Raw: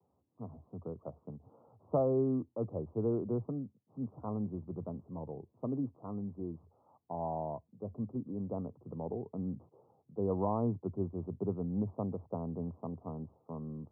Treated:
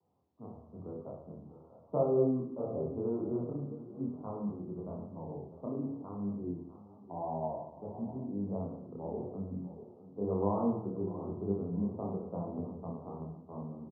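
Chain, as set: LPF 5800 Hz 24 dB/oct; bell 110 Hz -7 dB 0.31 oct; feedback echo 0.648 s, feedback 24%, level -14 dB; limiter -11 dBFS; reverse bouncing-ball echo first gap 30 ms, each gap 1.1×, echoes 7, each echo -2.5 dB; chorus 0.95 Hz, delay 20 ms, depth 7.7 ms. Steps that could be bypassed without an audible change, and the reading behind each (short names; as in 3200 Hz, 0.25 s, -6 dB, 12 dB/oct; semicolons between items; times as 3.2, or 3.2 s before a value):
LPF 5800 Hz: input band ends at 1200 Hz; limiter -11 dBFS: input peak -19.5 dBFS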